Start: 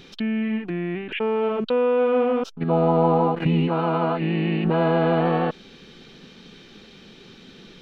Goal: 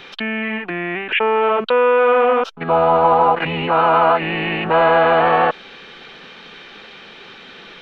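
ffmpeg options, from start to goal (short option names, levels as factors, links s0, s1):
-filter_complex "[0:a]apsyclip=7.94,acrossover=split=570 3100:gain=0.126 1 0.158[s0][s1][s2];[s0][s1][s2]amix=inputs=3:normalize=0,volume=0.668"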